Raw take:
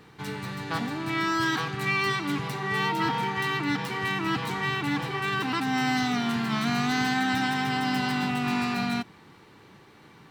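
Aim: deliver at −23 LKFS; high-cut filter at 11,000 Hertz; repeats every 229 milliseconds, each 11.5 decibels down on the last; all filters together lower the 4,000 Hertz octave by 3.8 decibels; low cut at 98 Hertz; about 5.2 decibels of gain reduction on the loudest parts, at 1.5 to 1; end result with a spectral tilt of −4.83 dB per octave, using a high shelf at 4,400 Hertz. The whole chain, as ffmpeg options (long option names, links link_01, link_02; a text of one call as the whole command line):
ffmpeg -i in.wav -af "highpass=98,lowpass=11000,equalizer=frequency=4000:width_type=o:gain=-7,highshelf=frequency=4400:gain=4,acompressor=threshold=-37dB:ratio=1.5,aecho=1:1:229|458|687:0.266|0.0718|0.0194,volume=9dB" out.wav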